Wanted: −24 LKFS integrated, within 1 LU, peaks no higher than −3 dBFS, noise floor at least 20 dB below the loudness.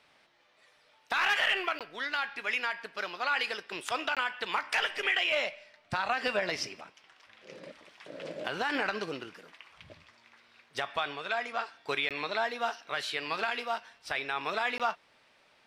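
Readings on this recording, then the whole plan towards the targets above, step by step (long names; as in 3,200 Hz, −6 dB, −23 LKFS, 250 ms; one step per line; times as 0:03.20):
number of dropouts 4; longest dropout 17 ms; integrated loudness −31.5 LKFS; sample peak −16.0 dBFS; target loudness −24.0 LKFS
→ repair the gap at 0:01.79/0:04.15/0:12.09/0:14.78, 17 ms
level +7.5 dB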